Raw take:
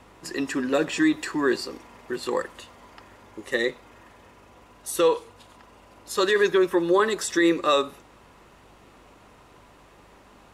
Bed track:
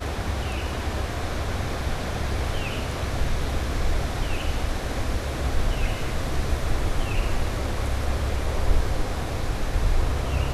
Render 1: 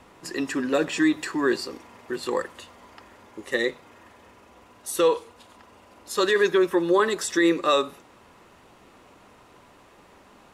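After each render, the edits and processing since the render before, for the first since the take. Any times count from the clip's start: de-hum 50 Hz, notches 3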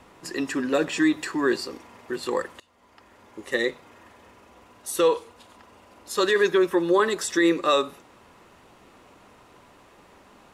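2.60–3.45 s: fade in, from -21 dB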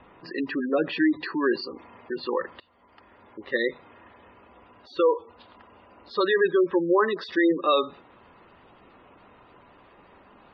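spectral gate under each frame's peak -20 dB strong; Chebyshev low-pass 4.7 kHz, order 6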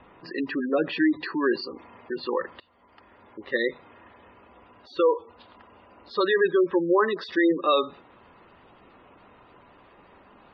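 no audible change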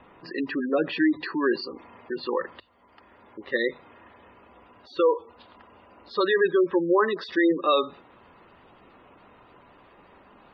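hum notches 50/100 Hz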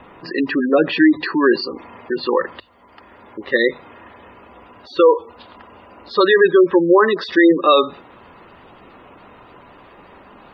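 trim +9.5 dB; peak limiter -3 dBFS, peak gain reduction 2 dB

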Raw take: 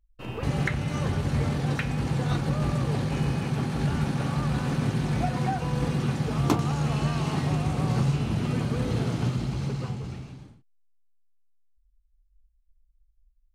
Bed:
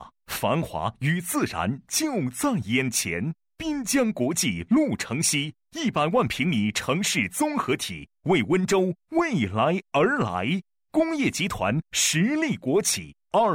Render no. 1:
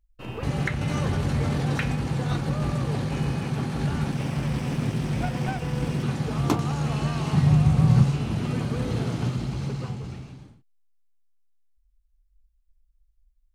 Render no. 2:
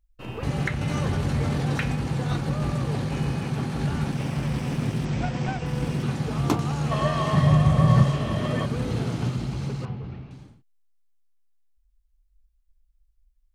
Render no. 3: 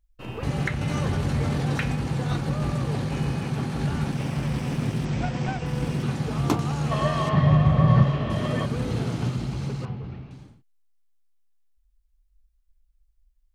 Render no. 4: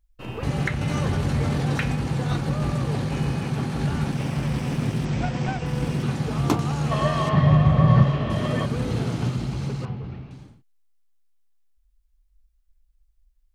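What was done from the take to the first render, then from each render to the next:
0.81–1.96 s: level flattener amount 50%; 4.12–6.03 s: comb filter that takes the minimum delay 0.37 ms; 7.33–8.04 s: resonant low shelf 220 Hz +7 dB, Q 1.5
5.05–5.66 s: steep low-pass 8.1 kHz 72 dB/octave; 6.91–8.66 s: small resonant body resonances 610/1100/1800/3200 Hz, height 16 dB; 9.85–10.31 s: distance through air 290 m
7.29–8.30 s: low-pass 3.4 kHz
trim +1.5 dB

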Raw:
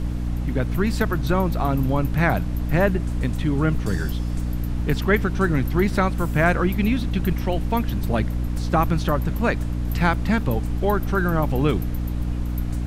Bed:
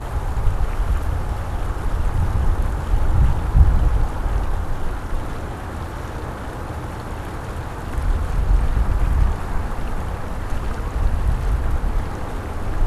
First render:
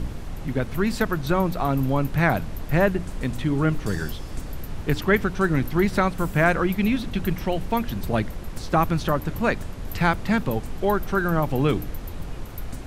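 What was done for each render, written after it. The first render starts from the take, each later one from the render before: de-hum 60 Hz, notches 5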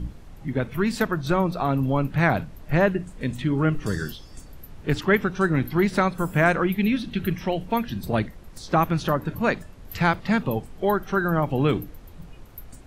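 noise print and reduce 11 dB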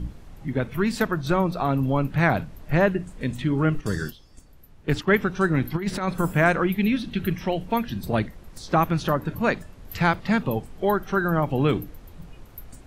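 3.81–5.16 s: gate -34 dBFS, range -9 dB; 5.74–6.33 s: compressor with a negative ratio -23 dBFS, ratio -0.5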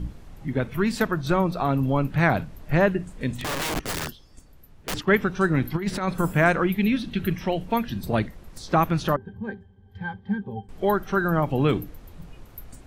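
3.36–4.94 s: integer overflow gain 23 dB; 9.16–10.69 s: pitch-class resonator G, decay 0.1 s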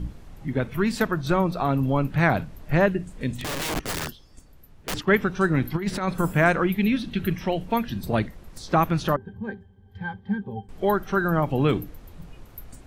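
2.86–3.69 s: dynamic bell 1.1 kHz, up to -4 dB, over -42 dBFS, Q 0.82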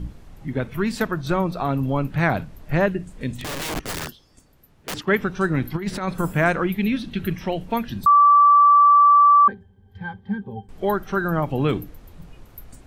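4.06–5.19 s: bass shelf 62 Hz -12 dB; 8.06–9.48 s: bleep 1.16 kHz -9.5 dBFS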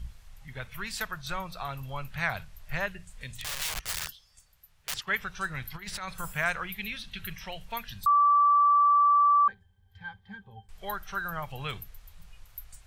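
amplifier tone stack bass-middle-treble 10-0-10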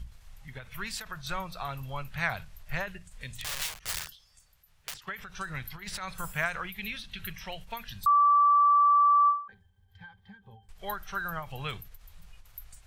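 endings held to a fixed fall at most 140 dB/s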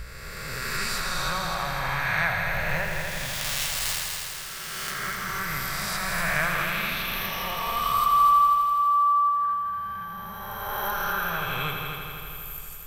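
reverse spectral sustain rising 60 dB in 2.43 s; multi-head delay 82 ms, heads all three, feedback 69%, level -9.5 dB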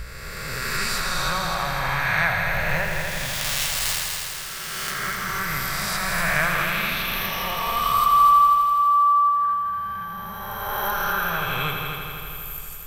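trim +3.5 dB

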